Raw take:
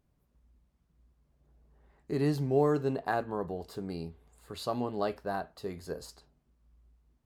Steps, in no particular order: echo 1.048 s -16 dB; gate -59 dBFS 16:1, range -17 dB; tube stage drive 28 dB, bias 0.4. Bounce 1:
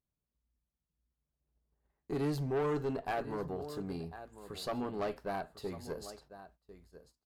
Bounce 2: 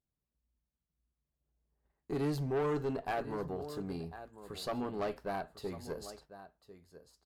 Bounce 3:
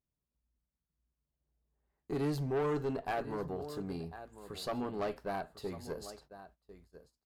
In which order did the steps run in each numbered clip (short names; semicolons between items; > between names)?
echo > gate > tube stage; gate > echo > tube stage; echo > tube stage > gate